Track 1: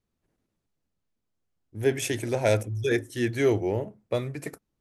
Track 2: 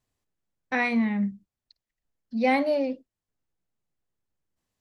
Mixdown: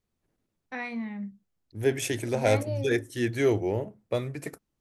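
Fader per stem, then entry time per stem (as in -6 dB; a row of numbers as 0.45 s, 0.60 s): -1.0 dB, -10.0 dB; 0.00 s, 0.00 s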